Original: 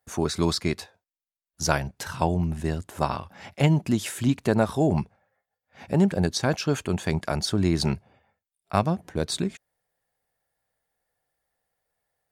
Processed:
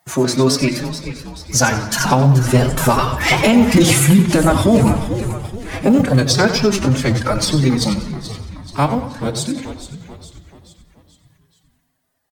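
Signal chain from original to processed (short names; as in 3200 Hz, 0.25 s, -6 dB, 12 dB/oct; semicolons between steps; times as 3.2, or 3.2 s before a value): G.711 law mismatch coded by mu; Doppler pass-by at 3.65, 14 m/s, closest 3.7 m; reverb removal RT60 1.1 s; notches 60/120/180/240/300 Hz; compressor 6:1, threshold -39 dBFS, peak gain reduction 20 dB; doubler 23 ms -14 dB; frequency-shifting echo 0.432 s, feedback 49%, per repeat -70 Hz, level -12 dB; on a send at -13 dB: reverb RT60 2.2 s, pre-delay 3 ms; on the sum: formant-preserving pitch shift +7 st; maximiser +34 dB; warbling echo 92 ms, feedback 35%, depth 130 cents, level -11 dB; gain -2 dB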